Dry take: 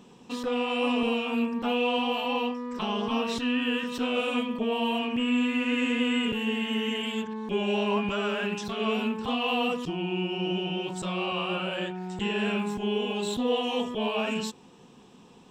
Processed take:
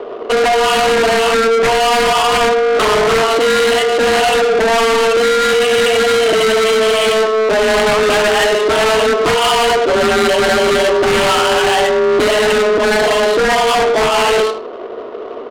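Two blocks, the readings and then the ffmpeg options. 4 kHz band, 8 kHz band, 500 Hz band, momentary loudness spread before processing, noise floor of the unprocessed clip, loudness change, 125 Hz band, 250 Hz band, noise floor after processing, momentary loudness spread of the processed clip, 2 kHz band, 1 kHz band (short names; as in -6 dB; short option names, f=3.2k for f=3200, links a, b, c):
+15.0 dB, +23.5 dB, +19.5 dB, 6 LU, -53 dBFS, +16.0 dB, +8.0 dB, +4.0 dB, -26 dBFS, 1 LU, +17.5 dB, +18.5 dB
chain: -af "alimiter=limit=-23.5dB:level=0:latency=1:release=449,asoftclip=type=tanh:threshold=-26dB,afreqshift=220,bass=f=250:g=9,treble=f=4k:g=-12,aecho=1:1:77|154|231|308:0.355|0.121|0.041|0.0139,aeval=exprs='0.0841*sin(PI/2*3.16*val(0)/0.0841)':c=same,acontrast=75,aresample=11025,aresample=44100,adynamicsmooth=sensitivity=1.5:basefreq=930,highshelf=f=4.3k:g=8.5,volume=5.5dB"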